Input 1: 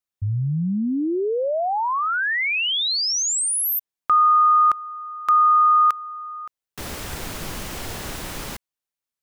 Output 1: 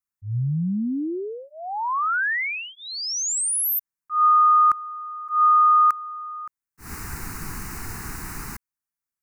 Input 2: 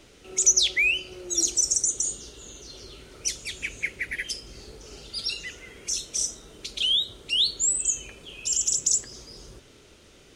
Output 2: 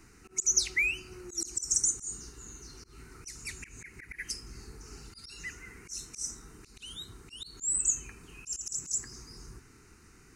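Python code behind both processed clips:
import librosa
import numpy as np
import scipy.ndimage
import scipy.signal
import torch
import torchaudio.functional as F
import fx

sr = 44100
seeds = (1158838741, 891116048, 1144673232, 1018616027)

y = fx.fixed_phaser(x, sr, hz=1400.0, stages=4)
y = fx.auto_swell(y, sr, attack_ms=153.0)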